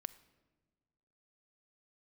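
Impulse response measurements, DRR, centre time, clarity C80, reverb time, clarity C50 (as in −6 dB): 15.5 dB, 3 ms, 19.0 dB, 1.5 s, 17.0 dB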